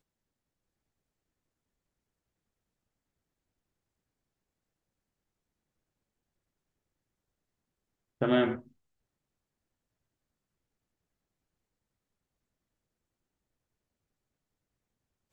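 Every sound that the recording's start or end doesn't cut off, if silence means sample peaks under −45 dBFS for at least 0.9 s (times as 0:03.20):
0:08.21–0:08.61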